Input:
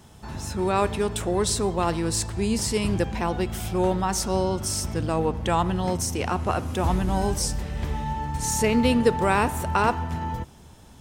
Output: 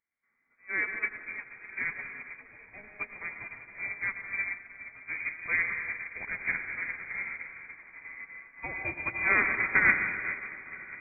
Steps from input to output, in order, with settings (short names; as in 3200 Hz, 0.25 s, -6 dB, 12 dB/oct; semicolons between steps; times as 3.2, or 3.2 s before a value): steep high-pass 500 Hz 72 dB/oct; diffused feedback echo 1.037 s, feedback 53%, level -9 dB; reverb RT60 3.8 s, pre-delay 90 ms, DRR -1 dB; inverted band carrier 2900 Hz; upward expander 2.5:1, over -41 dBFS